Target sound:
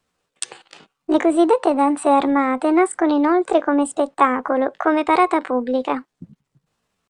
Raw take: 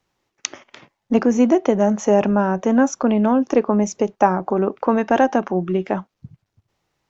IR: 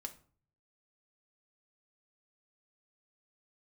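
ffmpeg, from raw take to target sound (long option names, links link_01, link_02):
-af "asetrate=60591,aresample=44100,atempo=0.727827"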